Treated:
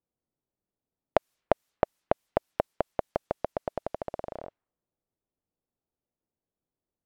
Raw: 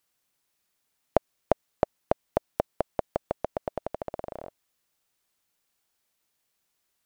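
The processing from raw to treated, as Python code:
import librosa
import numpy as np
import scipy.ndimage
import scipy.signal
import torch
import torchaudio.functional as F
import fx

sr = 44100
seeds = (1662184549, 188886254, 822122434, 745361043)

y = fx.env_lowpass(x, sr, base_hz=480.0, full_db=-31.5)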